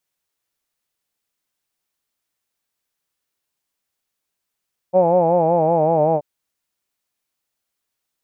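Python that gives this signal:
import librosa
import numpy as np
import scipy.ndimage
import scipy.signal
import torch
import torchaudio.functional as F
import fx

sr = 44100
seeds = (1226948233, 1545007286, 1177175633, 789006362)

y = fx.vowel(sr, seeds[0], length_s=1.28, word='hawed', hz=178.0, glide_st=-2.5, vibrato_hz=5.3, vibrato_st=0.9)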